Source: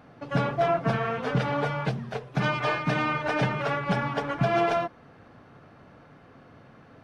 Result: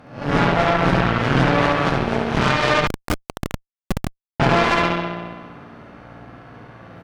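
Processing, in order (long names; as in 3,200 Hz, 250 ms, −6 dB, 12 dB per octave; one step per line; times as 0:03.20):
peak hold with a rise ahead of every peak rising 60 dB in 0.51 s
on a send: repeating echo 69 ms, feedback 51%, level −4 dB
on the sum: spring reverb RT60 1.4 s, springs 52 ms, chirp 75 ms, DRR 0 dB
in parallel at 0 dB: downward compressor 6 to 1, threshold −30 dBFS, peak gain reduction 15 dB
on the sum: harmonic generator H 2 −11 dB, 3 −30 dB, 4 −42 dB, 6 −12 dB, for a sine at −5 dBFS
0:02.87–0:04.40: comparator with hysteresis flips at −16 dBFS
level −1 dB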